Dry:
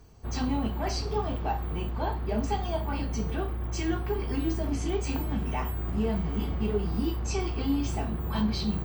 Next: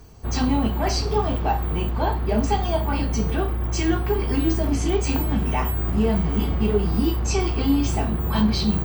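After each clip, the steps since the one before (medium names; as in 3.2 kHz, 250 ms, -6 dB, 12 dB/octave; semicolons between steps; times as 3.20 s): treble shelf 8.8 kHz +3.5 dB; trim +7.5 dB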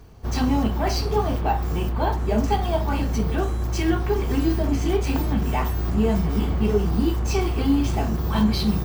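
median filter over 5 samples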